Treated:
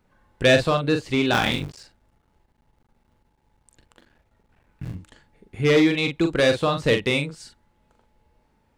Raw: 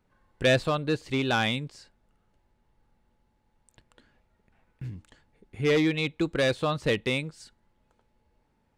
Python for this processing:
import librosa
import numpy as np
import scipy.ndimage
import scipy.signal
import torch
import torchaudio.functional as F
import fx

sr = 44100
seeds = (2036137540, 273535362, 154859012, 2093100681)

y = fx.cycle_switch(x, sr, every=3, mode='muted', at=(1.32, 4.92), fade=0.02)
y = fx.doubler(y, sr, ms=42.0, db=-6.5)
y = y * 10.0 ** (5.0 / 20.0)